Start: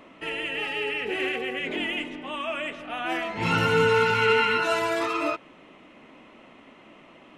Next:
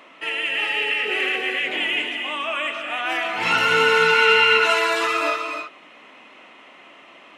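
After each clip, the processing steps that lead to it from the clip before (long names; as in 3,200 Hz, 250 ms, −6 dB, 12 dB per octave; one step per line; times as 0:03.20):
high-pass filter 1,300 Hz 6 dB per octave
high-shelf EQ 5,500 Hz −4.5 dB
reverb whose tail is shaped and stops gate 340 ms rising, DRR 4 dB
level +8.5 dB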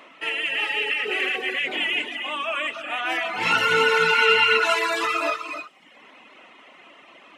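delay with a high-pass on its return 120 ms, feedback 63%, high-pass 5,500 Hz, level −12.5 dB
reverb reduction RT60 0.87 s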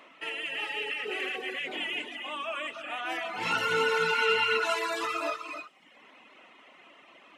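dynamic equaliser 2,200 Hz, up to −4 dB, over −32 dBFS, Q 1.1
level −6 dB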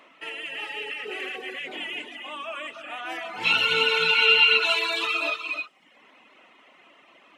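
gain on a spectral selection 0:03.44–0:05.66, 2,200–4,400 Hz +12 dB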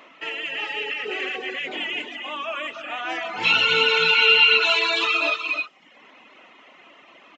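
in parallel at −2 dB: brickwall limiter −18 dBFS, peak gain reduction 10.5 dB
on the sum: downsampling to 16,000 Hz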